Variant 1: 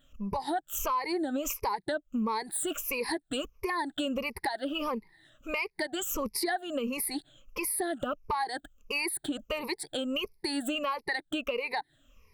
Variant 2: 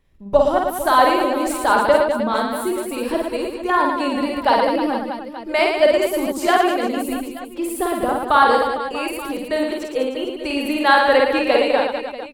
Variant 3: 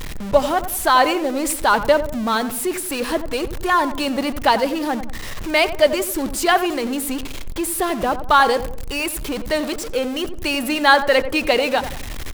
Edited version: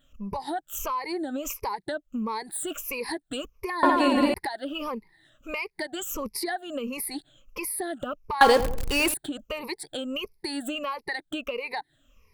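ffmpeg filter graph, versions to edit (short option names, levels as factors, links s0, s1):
-filter_complex "[0:a]asplit=3[s0][s1][s2];[s0]atrim=end=3.832[s3];[1:a]atrim=start=3.828:end=4.342[s4];[s1]atrim=start=4.338:end=8.412[s5];[2:a]atrim=start=8.408:end=9.142[s6];[s2]atrim=start=9.138[s7];[s3][s4]acrossfade=d=0.004:c1=hsin:c2=hsin[s8];[s8][s5]acrossfade=d=0.004:c1=hsin:c2=hsin[s9];[s9][s6]acrossfade=d=0.004:c1=hsin:c2=hsin[s10];[s10][s7]acrossfade=d=0.004:c1=hsin:c2=hsin"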